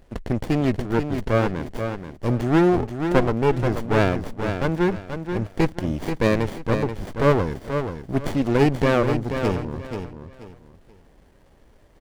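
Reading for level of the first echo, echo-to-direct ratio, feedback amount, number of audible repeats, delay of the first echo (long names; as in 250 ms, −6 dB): −7.5 dB, −7.0 dB, 27%, 3, 482 ms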